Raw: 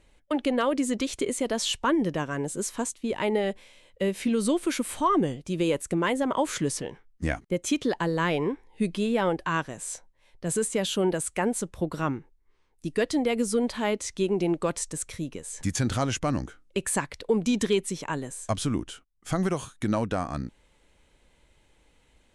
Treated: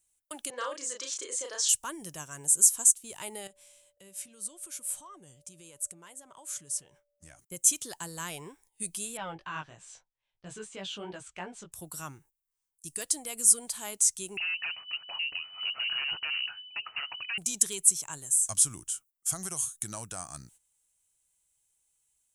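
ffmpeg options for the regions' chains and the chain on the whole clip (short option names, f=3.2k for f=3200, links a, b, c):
-filter_complex "[0:a]asettb=1/sr,asplit=3[a][b][c];[a]atrim=end=0.504[d];[b]atrim=start=0.5:end=1.69,asetpts=PTS-STARTPTS,afade=t=in:d=0.004:c=qsin,afade=t=out:st=1.186:d=0.004:c=qsin,highpass=f=340:w=0.5412,highpass=f=340:w=1.3066,equalizer=f=510:t=q:w=4:g=10,equalizer=f=720:t=q:w=4:g=-8,equalizer=f=1.1k:t=q:w=4:g=5,equalizer=f=1.7k:t=q:w=4:g=6,equalizer=f=2.6k:t=q:w=4:g=-3,lowpass=f=5.7k:w=0.5412,lowpass=f=5.7k:w=1.3066,asplit=2[e][f];[f]adelay=33,volume=-3dB[g];[e][g]amix=inputs=2:normalize=0,atrim=end_sample=52479[h];[c]atrim=start=1.686[i];[d][h]acrossfade=d=0.004:c1=hsin:c2=qsin[j];[j][i]acrossfade=d=0.004:c1=qsin:c2=hsin,asettb=1/sr,asplit=3[k][l][m];[k]atrim=end=3.474[n];[l]atrim=start=3.47:end=7.39,asetpts=PTS-STARTPTS,afade=t=in:d=0.004:c=qsin,afade=t=out:st=3.916:d=0.004:c=qsin,lowpass=f=4k:p=1,acompressor=threshold=-44dB:ratio=2:attack=3.2:release=140:knee=1:detection=peak,aeval=exprs='val(0)+0.00398*sin(2*PI*580*n/s)':c=same[o];[m]atrim=start=7.386[p];[n][o]acrossfade=d=0.004:c1=hsin:c2=qsin[q];[q][p]acrossfade=d=0.004:c1=qsin:c2=hsin,asettb=1/sr,asplit=3[r][s][t];[r]atrim=end=9.174[u];[s]atrim=start=9.17:end=11.72,asetpts=PTS-STARTPTS,afade=t=in:d=0.004:c=qsin,afade=t=out:st=2.546:d=0.004:c=qsin,acontrast=27,lowpass=f=3.5k:w=0.5412,lowpass=f=3.5k:w=1.3066,flanger=delay=15.5:depth=3.6:speed=3[v];[t]atrim=start=11.716[w];[u][v]acrossfade=d=0.004:c1=hsin:c2=qsin[x];[x][w]acrossfade=d=0.004:c1=qsin:c2=hsin,asettb=1/sr,asplit=3[y][z][aa];[y]atrim=end=14.374[ab];[z]atrim=start=14.37:end=17.38,asetpts=PTS-STARTPTS,afade=t=in:d=0.004:c=qsin,afade=t=out:st=3.006:d=0.004:c=qsin,acompressor=threshold=-37dB:ratio=2:attack=3.2:release=140:knee=1:detection=peak,aeval=exprs='0.1*sin(PI/2*3.98*val(0)/0.1)':c=same,lowpass=f=2.6k:t=q:w=0.5098,lowpass=f=2.6k:t=q:w=0.6013,lowpass=f=2.6k:t=q:w=0.9,lowpass=f=2.6k:t=q:w=2.563,afreqshift=-3000[ac];[aa]atrim=start=17.376[ad];[ab][ac]acrossfade=d=0.004:c1=hsin:c2=qsin[ae];[ae][ad]acrossfade=d=0.004:c1=qsin:c2=hsin,aemphasis=mode=production:type=riaa,agate=range=-12dB:threshold=-51dB:ratio=16:detection=peak,equalizer=f=125:t=o:w=1:g=4,equalizer=f=250:t=o:w=1:g=-12,equalizer=f=500:t=o:w=1:g=-12,equalizer=f=1k:t=o:w=1:g=-5,equalizer=f=2k:t=o:w=1:g=-11,equalizer=f=4k:t=o:w=1:g=-9,equalizer=f=8k:t=o:w=1:g=6,volume=-2dB"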